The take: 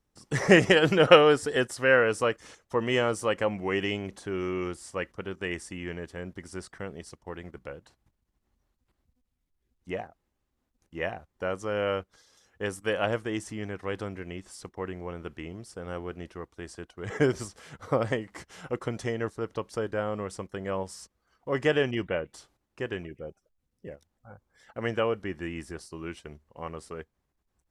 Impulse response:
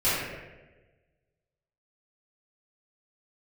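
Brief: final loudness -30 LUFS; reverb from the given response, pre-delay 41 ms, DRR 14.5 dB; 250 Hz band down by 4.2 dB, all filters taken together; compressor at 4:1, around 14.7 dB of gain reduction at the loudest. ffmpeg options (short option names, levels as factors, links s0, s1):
-filter_complex "[0:a]equalizer=f=250:t=o:g=-6.5,acompressor=threshold=0.0355:ratio=4,asplit=2[s0][s1];[1:a]atrim=start_sample=2205,adelay=41[s2];[s1][s2]afir=irnorm=-1:irlink=0,volume=0.0355[s3];[s0][s3]amix=inputs=2:normalize=0,volume=2.11"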